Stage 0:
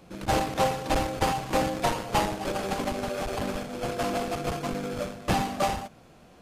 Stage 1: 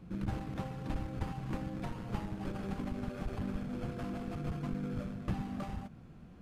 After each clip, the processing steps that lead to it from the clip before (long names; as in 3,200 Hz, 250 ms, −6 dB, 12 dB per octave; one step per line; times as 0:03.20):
downward compressor, threshold −33 dBFS, peak gain reduction 13 dB
drawn EQ curve 190 Hz 0 dB, 610 Hz −16 dB, 1,400 Hz −11 dB, 6,400 Hz −20 dB
level +4.5 dB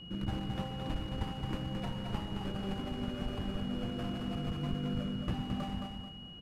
repeating echo 219 ms, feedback 28%, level −5 dB
steady tone 2,900 Hz −49 dBFS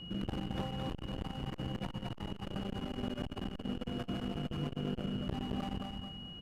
saturating transformer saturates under 400 Hz
level +2 dB